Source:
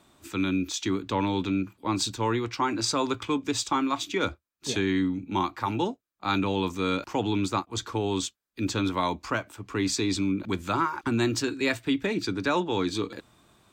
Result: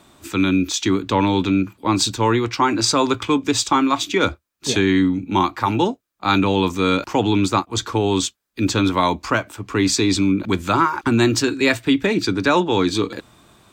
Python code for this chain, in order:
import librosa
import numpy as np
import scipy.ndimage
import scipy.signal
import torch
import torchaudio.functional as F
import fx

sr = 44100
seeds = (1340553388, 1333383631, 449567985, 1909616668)

y = x * 10.0 ** (9.0 / 20.0)